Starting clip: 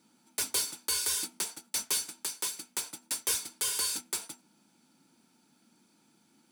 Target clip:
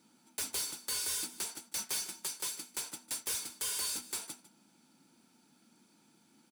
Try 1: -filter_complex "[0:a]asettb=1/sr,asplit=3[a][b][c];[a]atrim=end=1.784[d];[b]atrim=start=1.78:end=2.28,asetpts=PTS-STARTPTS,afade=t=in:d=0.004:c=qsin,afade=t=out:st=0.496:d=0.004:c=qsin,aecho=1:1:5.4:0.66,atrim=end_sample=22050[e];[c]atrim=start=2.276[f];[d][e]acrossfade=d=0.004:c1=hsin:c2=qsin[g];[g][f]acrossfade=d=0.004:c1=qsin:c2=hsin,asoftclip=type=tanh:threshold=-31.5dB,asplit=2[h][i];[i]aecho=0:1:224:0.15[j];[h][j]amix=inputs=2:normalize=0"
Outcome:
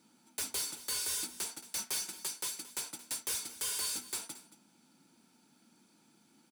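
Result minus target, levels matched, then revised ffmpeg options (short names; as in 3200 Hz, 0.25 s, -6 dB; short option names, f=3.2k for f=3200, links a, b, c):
echo 73 ms late
-filter_complex "[0:a]asettb=1/sr,asplit=3[a][b][c];[a]atrim=end=1.784[d];[b]atrim=start=1.78:end=2.28,asetpts=PTS-STARTPTS,afade=t=in:d=0.004:c=qsin,afade=t=out:st=0.496:d=0.004:c=qsin,aecho=1:1:5.4:0.66,atrim=end_sample=22050[e];[c]atrim=start=2.276[f];[d][e]acrossfade=d=0.004:c1=hsin:c2=qsin[g];[g][f]acrossfade=d=0.004:c1=qsin:c2=hsin,asoftclip=type=tanh:threshold=-31.5dB,asplit=2[h][i];[i]aecho=0:1:151:0.15[j];[h][j]amix=inputs=2:normalize=0"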